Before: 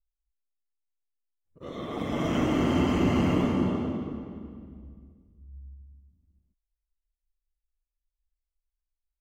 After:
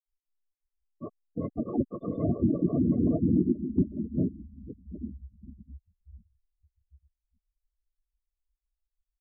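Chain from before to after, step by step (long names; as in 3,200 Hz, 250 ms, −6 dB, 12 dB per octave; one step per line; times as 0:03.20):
gate on every frequency bin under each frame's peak −10 dB strong
granular cloud, spray 958 ms, pitch spread up and down by 0 semitones
treble cut that deepens with the level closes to 810 Hz, closed at −28.5 dBFS
level +3.5 dB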